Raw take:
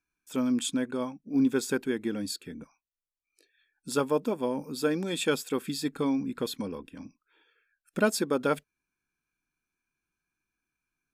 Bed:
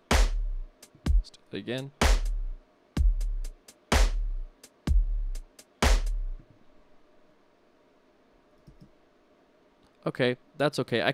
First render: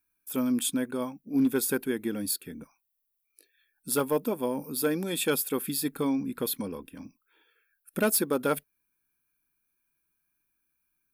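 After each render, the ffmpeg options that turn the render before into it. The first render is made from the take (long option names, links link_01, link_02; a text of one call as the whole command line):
ffmpeg -i in.wav -af "aexciter=amount=6.9:drive=4.8:freq=9700,asoftclip=type=hard:threshold=-17.5dB" out.wav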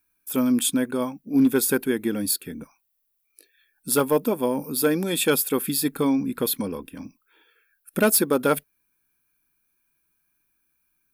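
ffmpeg -i in.wav -af "volume=6dB" out.wav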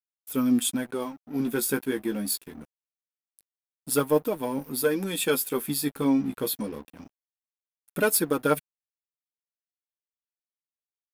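ffmpeg -i in.wav -af "flanger=delay=6.4:depth=8.4:regen=16:speed=0.24:shape=sinusoidal,aeval=exprs='sgn(val(0))*max(abs(val(0))-0.00531,0)':channel_layout=same" out.wav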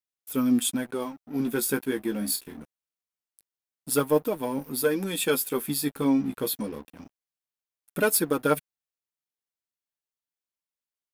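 ffmpeg -i in.wav -filter_complex "[0:a]asettb=1/sr,asplit=3[link_01][link_02][link_03];[link_01]atrim=end=2.184[link_04];[link_02]atrim=start=2.18:end=2.59,asetpts=PTS-STARTPTS,afade=type=in:duration=0.004:curve=qsin,afade=type=out:start_time=0.406:duration=0.004:curve=qsin,asplit=2[link_05][link_06];[link_06]adelay=33,volume=-7dB[link_07];[link_05][link_07]amix=inputs=2:normalize=0,atrim=end_sample=18081[link_08];[link_03]atrim=start=2.586[link_09];[link_04][link_08]acrossfade=duration=0.004:curve1=hsin:curve2=qsin[link_10];[link_10][link_09]acrossfade=duration=0.004:curve1=qsin:curve2=hsin" out.wav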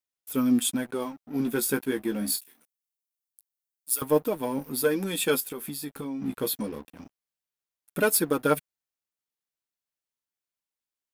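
ffmpeg -i in.wav -filter_complex "[0:a]asettb=1/sr,asplit=3[link_01][link_02][link_03];[link_01]atrim=end=2.384[link_04];[link_02]atrim=start=2.38:end=4.02,asetpts=PTS-STARTPTS,afade=type=in:duration=0.004:curve=qsin,afade=type=out:start_time=1.636:duration=0.004:curve=qsin,aderivative[link_05];[link_03]atrim=start=4.016[link_06];[link_04][link_05]acrossfade=duration=0.004:curve1=hsin:curve2=qsin[link_07];[link_07][link_06]acrossfade=duration=0.004:curve1=qsin:curve2=hsin,asettb=1/sr,asplit=3[link_08][link_09][link_10];[link_08]atrim=end=5.404[link_11];[link_09]atrim=start=5.4:end=6.22,asetpts=PTS-STARTPTS,afade=type=in:duration=0.004:curve=qsin,afade=type=out:start_time=0.816:duration=0.004:curve=qsin,acompressor=threshold=-32dB:ratio=5:attack=3.2:release=140:knee=1:detection=peak[link_12];[link_10]atrim=start=6.216[link_13];[link_11][link_12]acrossfade=duration=0.004:curve1=hsin:curve2=qsin[link_14];[link_14][link_13]acrossfade=duration=0.004:curve1=qsin:curve2=hsin" out.wav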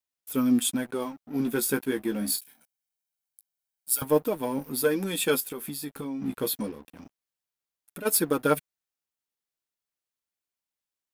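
ffmpeg -i in.wav -filter_complex "[0:a]asettb=1/sr,asplit=3[link_01][link_02][link_03];[link_01]atrim=end=2.384[link_04];[link_02]atrim=start=2.38:end=4.05,asetpts=PTS-STARTPTS,afade=type=in:duration=0.004:curve=qsin,afade=type=out:start_time=1.666:duration=0.004:curve=qsin,aecho=1:1:1.3:0.65,atrim=end_sample=73647[link_05];[link_03]atrim=start=4.046[link_06];[link_04][link_05]acrossfade=duration=0.004:curve1=hsin:curve2=qsin[link_07];[link_07][link_06]acrossfade=duration=0.004:curve1=qsin:curve2=hsin,asplit=3[link_08][link_09][link_10];[link_08]afade=type=out:start_time=6.71:duration=0.02[link_11];[link_09]acompressor=threshold=-40dB:ratio=3:attack=3.2:release=140:knee=1:detection=peak,afade=type=in:start_time=6.71:duration=0.02,afade=type=out:start_time=8.05:duration=0.02[link_12];[link_10]afade=type=in:start_time=8.05:duration=0.02[link_13];[link_11][link_12][link_13]amix=inputs=3:normalize=0" out.wav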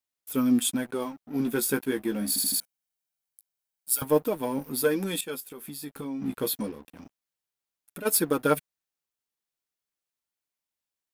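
ffmpeg -i in.wav -filter_complex "[0:a]asplit=6[link_01][link_02][link_03][link_04][link_05][link_06];[link_01]atrim=end=2.362[link_07];[link_02]atrim=start=2.278:end=2.362[link_08];[link_03]atrim=start=2.278:end=2.362[link_09];[link_04]atrim=start=2.278:end=2.362[link_10];[link_05]atrim=start=2.598:end=5.21,asetpts=PTS-STARTPTS,afade=type=out:start_time=2.608:duration=0.004:curve=hsin:silence=0.188365[link_11];[link_06]atrim=start=5.21,asetpts=PTS-STARTPTS,afade=type=in:duration=0.93:silence=0.188365[link_12];[link_07][link_08]acrossfade=duration=0.004:curve1=hsin:curve2=hsin[link_13];[link_13][link_09]acrossfade=duration=0.004:curve1=hsin:curve2=hsin[link_14];[link_14][link_10]acrossfade=duration=0.004:curve1=hsin:curve2=hsin[link_15];[link_11][link_12]concat=n=2:v=0:a=1[link_16];[link_15][link_16]acrossfade=duration=0.004:curve1=hsin:curve2=hsin" out.wav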